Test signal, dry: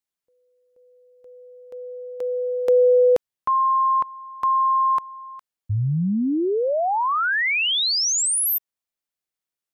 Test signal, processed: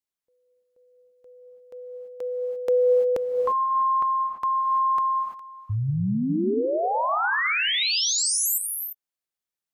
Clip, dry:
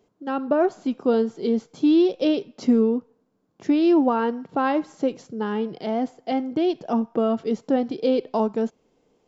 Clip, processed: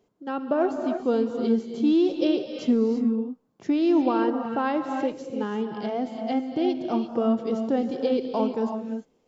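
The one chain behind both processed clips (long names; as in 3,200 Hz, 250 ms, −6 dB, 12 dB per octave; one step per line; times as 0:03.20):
reverb whose tail is shaped and stops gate 370 ms rising, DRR 5 dB
level −3.5 dB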